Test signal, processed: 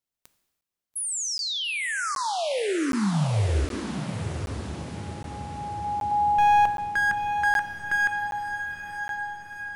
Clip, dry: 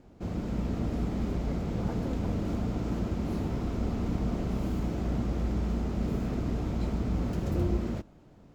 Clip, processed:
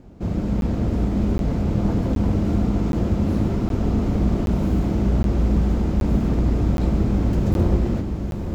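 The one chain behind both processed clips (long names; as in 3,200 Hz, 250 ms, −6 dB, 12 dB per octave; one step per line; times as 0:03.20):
wavefolder on the positive side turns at −25.5 dBFS
low-shelf EQ 410 Hz +6.5 dB
feedback delay with all-pass diffusion 928 ms, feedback 57%, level −7.5 dB
reverb whose tail is shaped and stops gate 380 ms falling, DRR 10 dB
regular buffer underruns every 0.77 s, samples 512, zero, from 0:00.61
level +4.5 dB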